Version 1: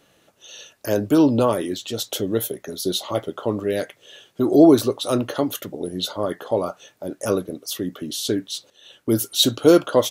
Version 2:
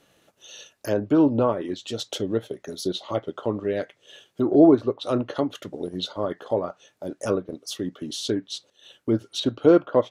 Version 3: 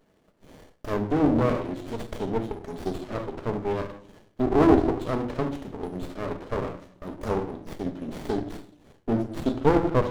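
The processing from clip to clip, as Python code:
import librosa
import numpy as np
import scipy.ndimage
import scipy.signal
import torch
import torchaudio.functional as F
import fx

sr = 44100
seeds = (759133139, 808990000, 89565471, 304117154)

y1 = fx.transient(x, sr, attack_db=0, sustain_db=-5)
y1 = fx.env_lowpass_down(y1, sr, base_hz=1900.0, full_db=-17.0)
y1 = y1 * 10.0 ** (-2.5 / 20.0)
y2 = fx.room_shoebox(y1, sr, seeds[0], volume_m3=790.0, walls='furnished', distance_m=1.5)
y2 = fx.running_max(y2, sr, window=33)
y2 = y2 * 10.0 ** (-2.0 / 20.0)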